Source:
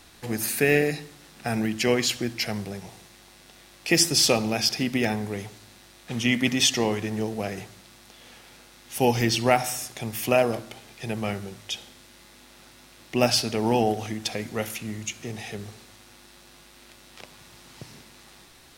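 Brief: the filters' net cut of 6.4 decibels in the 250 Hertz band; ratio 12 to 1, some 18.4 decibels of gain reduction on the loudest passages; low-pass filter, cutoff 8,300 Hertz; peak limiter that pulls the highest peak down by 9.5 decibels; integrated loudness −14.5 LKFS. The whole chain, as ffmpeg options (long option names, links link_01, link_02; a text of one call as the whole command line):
ffmpeg -i in.wav -af "lowpass=8300,equalizer=frequency=250:width_type=o:gain=-8,acompressor=threshold=-35dB:ratio=12,volume=28dB,alimiter=limit=-0.5dB:level=0:latency=1" out.wav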